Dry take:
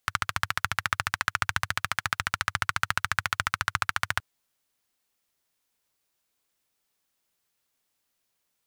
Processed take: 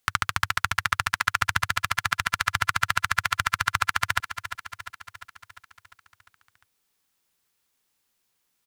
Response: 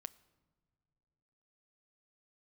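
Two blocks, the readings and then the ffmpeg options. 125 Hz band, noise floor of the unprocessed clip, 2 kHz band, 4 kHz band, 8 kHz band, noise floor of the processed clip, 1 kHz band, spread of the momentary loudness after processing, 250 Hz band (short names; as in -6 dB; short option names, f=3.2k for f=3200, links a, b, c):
+2.5 dB, -78 dBFS, +3.0 dB, +3.5 dB, +3.5 dB, -75 dBFS, +3.5 dB, 13 LU, +2.0 dB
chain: -filter_complex "[0:a]equalizer=f=630:t=o:w=0.22:g=-8,asplit=2[a][b];[b]aecho=0:1:350|700|1050|1400|1750|2100|2450:0.282|0.166|0.0981|0.0579|0.0342|0.0201|0.0119[c];[a][c]amix=inputs=2:normalize=0,volume=3dB"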